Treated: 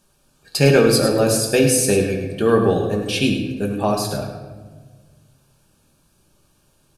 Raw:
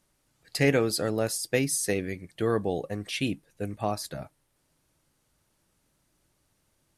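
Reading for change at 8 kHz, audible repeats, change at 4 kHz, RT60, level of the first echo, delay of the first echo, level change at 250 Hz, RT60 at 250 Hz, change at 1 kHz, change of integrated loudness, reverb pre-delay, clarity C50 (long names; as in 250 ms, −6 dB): +10.0 dB, 1, +10.5 dB, 1.4 s, −10.0 dB, 104 ms, +11.0 dB, 2.0 s, +10.0 dB, +10.5 dB, 5 ms, 4.5 dB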